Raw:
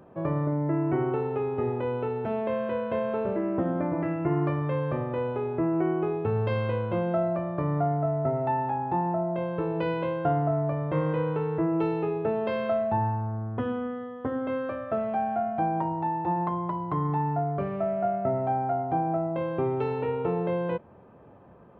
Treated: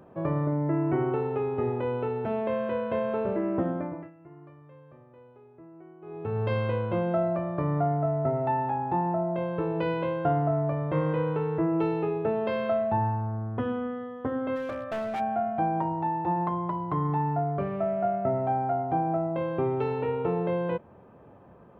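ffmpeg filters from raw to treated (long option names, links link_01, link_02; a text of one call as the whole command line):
ffmpeg -i in.wav -filter_complex "[0:a]asplit=3[link_01][link_02][link_03];[link_01]afade=type=out:start_time=14.55:duration=0.02[link_04];[link_02]asoftclip=type=hard:threshold=-28.5dB,afade=type=in:start_time=14.55:duration=0.02,afade=type=out:start_time=15.19:duration=0.02[link_05];[link_03]afade=type=in:start_time=15.19:duration=0.02[link_06];[link_04][link_05][link_06]amix=inputs=3:normalize=0,asplit=3[link_07][link_08][link_09];[link_07]atrim=end=4.11,asetpts=PTS-STARTPTS,afade=type=out:start_time=3.61:duration=0.5:silence=0.0668344[link_10];[link_08]atrim=start=4.11:end=6.01,asetpts=PTS-STARTPTS,volume=-23.5dB[link_11];[link_09]atrim=start=6.01,asetpts=PTS-STARTPTS,afade=type=in:duration=0.5:silence=0.0668344[link_12];[link_10][link_11][link_12]concat=n=3:v=0:a=1" out.wav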